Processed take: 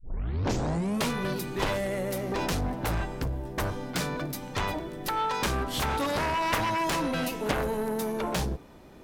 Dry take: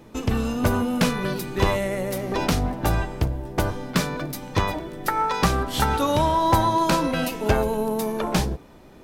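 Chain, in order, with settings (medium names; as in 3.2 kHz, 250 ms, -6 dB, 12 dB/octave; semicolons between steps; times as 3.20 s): tape start-up on the opening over 1.10 s; Chebyshev shaper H 3 -8 dB, 7 -14 dB, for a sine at -5 dBFS; trim -6.5 dB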